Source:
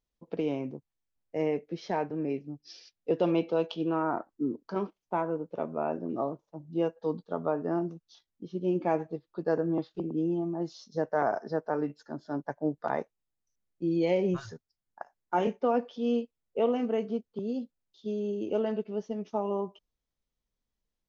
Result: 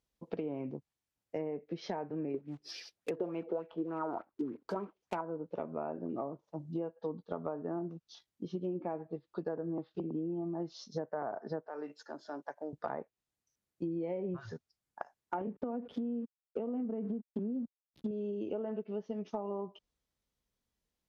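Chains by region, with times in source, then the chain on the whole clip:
0:02.34–0:05.21: one scale factor per block 5 bits + auto-filter bell 3.4 Hz 360–2,500 Hz +12 dB
0:11.67–0:12.73: high-pass filter 430 Hz + downward compressor 2 to 1, threshold −43 dBFS
0:15.41–0:18.11: slack as between gear wheels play −48.5 dBFS + parametric band 230 Hz +12 dB 1.6 octaves + downward compressor 12 to 1, threshold −25 dBFS
whole clip: high-pass filter 47 Hz; treble cut that deepens with the level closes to 1,400 Hz, closed at −25.5 dBFS; downward compressor 6 to 1, threshold −37 dBFS; level +2.5 dB

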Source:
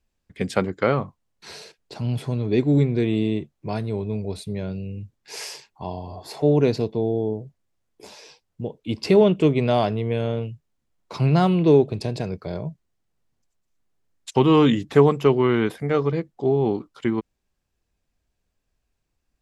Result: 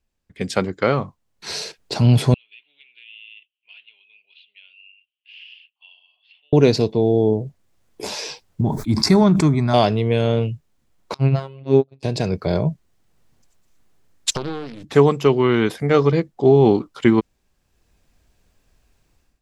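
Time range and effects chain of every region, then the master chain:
0:02.34–0:06.53: flat-topped band-pass 2,900 Hz, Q 5.6 + high-frequency loss of the air 210 metres + downward compressor 2.5 to 1, threshold −55 dBFS
0:08.61–0:09.74: phaser with its sweep stopped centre 1,200 Hz, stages 4 + level that may fall only so fast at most 57 dB per second
0:11.14–0:12.03: high-shelf EQ 6,700 Hz −9.5 dB + phases set to zero 135 Hz + expander for the loud parts 2.5 to 1, over −30 dBFS
0:14.30–0:14.84: gain on one half-wave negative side −7 dB + downward compressor 20 to 1, threshold −32 dBFS + highs frequency-modulated by the lows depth 0.78 ms
whole clip: dynamic equaliser 5,500 Hz, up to +7 dB, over −48 dBFS, Q 0.94; automatic gain control gain up to 15.5 dB; level −1 dB

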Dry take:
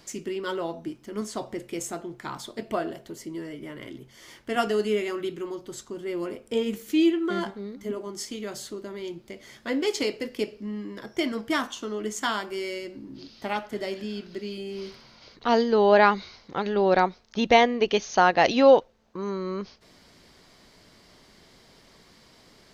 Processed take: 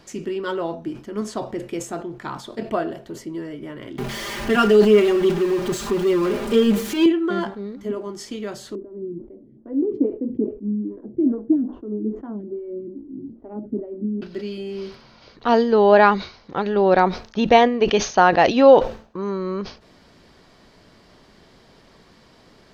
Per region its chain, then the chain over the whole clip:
0:03.98–0:07.06: converter with a step at zero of −29.5 dBFS + comb filter 5 ms, depth 96%
0:08.75–0:14.22: low-pass with resonance 290 Hz, resonance Q 2.5 + phaser with staggered stages 2.4 Hz
whole clip: high-shelf EQ 4,200 Hz −11 dB; notch filter 2,100 Hz, Q 16; level that may fall only so fast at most 140 dB per second; level +5 dB

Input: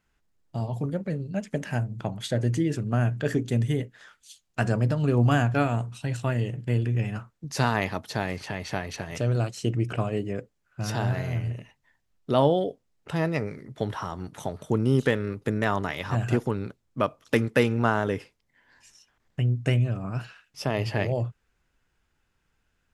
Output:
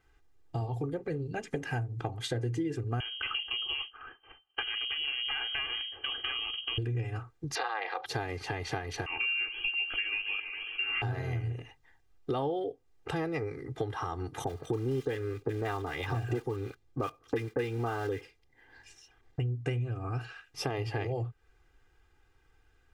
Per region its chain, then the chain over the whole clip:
0:03.00–0:06.78: lower of the sound and its delayed copy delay 0.53 ms + downward compressor 2.5 to 1, threshold −27 dBFS + voice inversion scrambler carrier 3,100 Hz
0:07.55–0:08.06: Chebyshev band-pass filter 600–4,200 Hz, order 3 + ring modulation 110 Hz + envelope flattener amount 50%
0:09.06–0:11.02: voice inversion scrambler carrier 2,900 Hz + parametric band 100 Hz −9 dB 2.9 octaves + feedback echo with a swinging delay time 137 ms, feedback 73%, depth 172 cents, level −14 dB
0:14.44–0:19.40: one scale factor per block 5 bits + high-shelf EQ 7,900 Hz −6.5 dB + multiband delay without the direct sound lows, highs 30 ms, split 1,200 Hz
whole clip: high-shelf EQ 3,700 Hz −7.5 dB; comb filter 2.5 ms, depth 95%; downward compressor 4 to 1, threshold −35 dBFS; level +3 dB

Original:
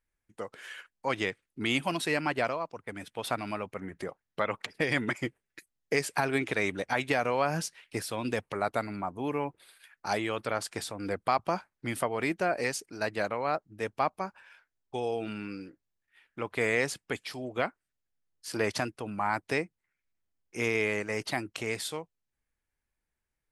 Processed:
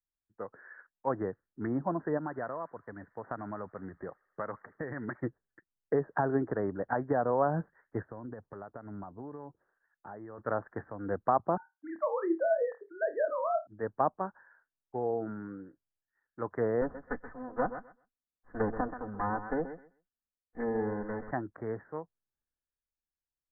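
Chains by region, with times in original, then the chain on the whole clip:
0:02.17–0:05.20: downward compressor 2.5 to 1, threshold −32 dBFS + delay with a high-pass on its return 76 ms, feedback 80%, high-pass 2,900 Hz, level −11.5 dB
0:08.04–0:10.38: downward compressor 12 to 1, threshold −33 dBFS + head-to-tape spacing loss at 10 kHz 34 dB
0:11.57–0:13.67: three sine waves on the formant tracks + flutter between parallel walls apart 4.7 metres, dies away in 0.2 s
0:16.81–0:21.31: lower of the sound and its delayed copy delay 4 ms + repeating echo 129 ms, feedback 20%, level −10.5 dB
whole clip: treble cut that deepens with the level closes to 1,000 Hz, closed at −26.5 dBFS; Butterworth low-pass 1,800 Hz 96 dB per octave; multiband upward and downward expander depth 40%

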